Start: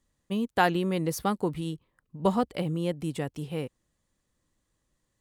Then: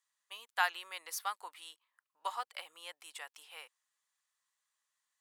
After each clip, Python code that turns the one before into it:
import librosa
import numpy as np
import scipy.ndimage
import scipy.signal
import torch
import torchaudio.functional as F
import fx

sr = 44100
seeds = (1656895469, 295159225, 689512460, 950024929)

y = scipy.signal.sosfilt(scipy.signal.butter(4, 960.0, 'highpass', fs=sr, output='sos'), x)
y = F.gain(torch.from_numpy(y), -3.5).numpy()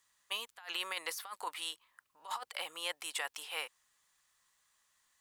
y = fx.low_shelf(x, sr, hz=200.0, db=9.5)
y = fx.over_compress(y, sr, threshold_db=-46.0, ratio=-1.0)
y = F.gain(torch.from_numpy(y), 5.0).numpy()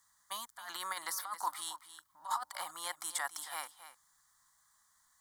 y = fx.fixed_phaser(x, sr, hz=1100.0, stages=4)
y = y + 10.0 ** (-13.0 / 20.0) * np.pad(y, (int(273 * sr / 1000.0), 0))[:len(y)]
y = F.gain(torch.from_numpy(y), 5.5).numpy()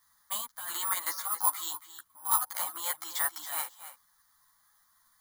y = (np.kron(scipy.signal.resample_poly(x, 1, 4), np.eye(4)[0]) * 4)[:len(x)]
y = fx.ensemble(y, sr)
y = F.gain(torch.from_numpy(y), 6.5).numpy()